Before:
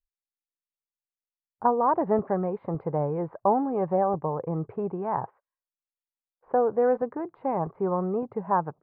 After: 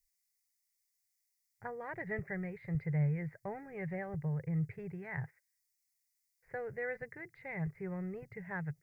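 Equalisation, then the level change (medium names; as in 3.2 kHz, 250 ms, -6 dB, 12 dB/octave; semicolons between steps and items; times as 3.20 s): FFT filter 150 Hz 0 dB, 250 Hz -28 dB, 380 Hz -18 dB, 670 Hz -22 dB, 1.1 kHz -29 dB, 2 kHz +13 dB, 3 kHz -6 dB, 5.1 kHz +13 dB; +2.0 dB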